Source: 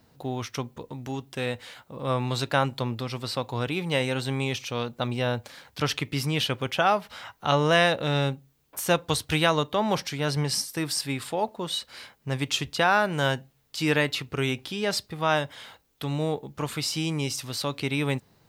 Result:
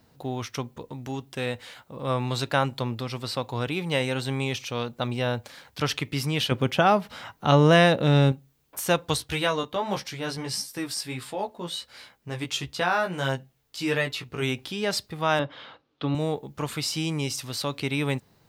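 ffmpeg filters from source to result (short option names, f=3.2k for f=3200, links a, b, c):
-filter_complex "[0:a]asettb=1/sr,asplit=3[a][b][c];[a]atrim=end=6.514[d];[b]atrim=start=6.51:end=8.32,asetpts=PTS-STARTPTS,afade=t=in:d=0.004:c=qsin,afade=t=out:st=1.806:d=0.004:c=qsin,equalizer=f=200:t=o:w=2.5:g=8.5[e];[c]atrim=start=8.316[f];[d][e]acrossfade=d=0.004:c1=hsin:c2=qsin[g];[g][f]acrossfade=d=0.004:c1=qsin:c2=hsin,asplit=3[h][i][j];[h]afade=t=out:st=9.17:d=0.02[k];[i]flanger=delay=15:depth=2.5:speed=1.5,afade=t=in:st=9.17:d=0.02,afade=t=out:st=14.41:d=0.02[l];[j]afade=t=in:st=14.41:d=0.02[m];[k][l][m]amix=inputs=3:normalize=0,asettb=1/sr,asplit=3[n][o][p];[n]atrim=end=15.394[q];[o]atrim=start=15.39:end=16.15,asetpts=PTS-STARTPTS,afade=t=in:d=0.004:c=qsin,afade=t=out:st=0.756:d=0.004:c=qsin,highpass=110,equalizer=f=130:t=q:w=4:g=4,equalizer=f=300:t=q:w=4:g=8,equalizer=f=530:t=q:w=4:g=5,equalizer=f=1.2k:t=q:w=4:g=6,equalizer=f=2k:t=q:w=4:g=-3,lowpass=f=4.2k:w=0.5412,lowpass=f=4.2k:w=1.3066[r];[p]atrim=start=16.146[s];[q][r]acrossfade=d=0.004:c1=hsin:c2=qsin[t];[t][s]acrossfade=d=0.004:c1=qsin:c2=hsin"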